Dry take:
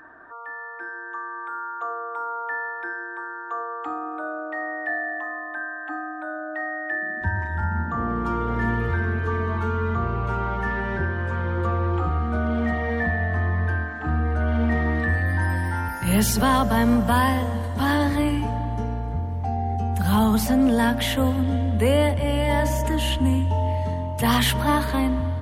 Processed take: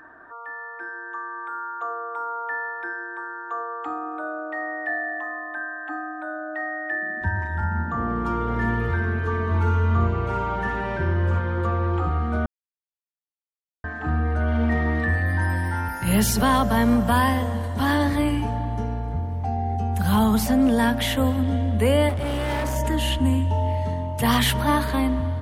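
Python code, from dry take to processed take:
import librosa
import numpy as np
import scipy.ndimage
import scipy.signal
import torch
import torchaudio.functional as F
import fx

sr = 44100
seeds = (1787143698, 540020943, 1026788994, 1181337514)

y = fx.room_flutter(x, sr, wall_m=9.9, rt60_s=0.79, at=(9.5, 11.38), fade=0.02)
y = fx.clip_hard(y, sr, threshold_db=-22.5, at=(22.09, 22.76))
y = fx.edit(y, sr, fx.silence(start_s=12.46, length_s=1.38), tone=tone)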